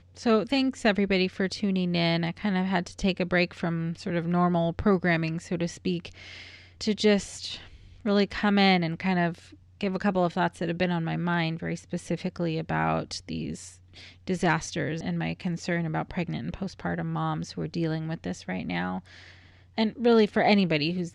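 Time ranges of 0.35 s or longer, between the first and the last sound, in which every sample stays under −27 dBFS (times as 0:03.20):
0:06.06–0:06.81
0:07.54–0:08.06
0:09.31–0:09.81
0:13.51–0:14.28
0:18.98–0:19.78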